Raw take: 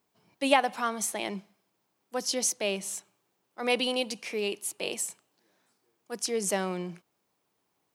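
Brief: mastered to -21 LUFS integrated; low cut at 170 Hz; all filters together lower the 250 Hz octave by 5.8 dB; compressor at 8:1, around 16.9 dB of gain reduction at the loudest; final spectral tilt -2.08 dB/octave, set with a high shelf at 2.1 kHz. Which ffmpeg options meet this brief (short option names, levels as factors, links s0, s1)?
-af "highpass=170,equalizer=f=250:t=o:g=-6,highshelf=f=2100:g=8,acompressor=threshold=0.0224:ratio=8,volume=5.96"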